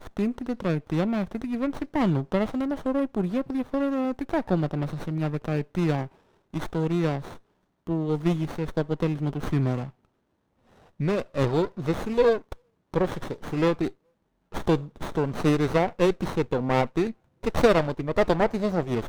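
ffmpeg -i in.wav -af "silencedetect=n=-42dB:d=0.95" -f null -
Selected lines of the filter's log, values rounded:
silence_start: 9.90
silence_end: 11.00 | silence_duration: 1.10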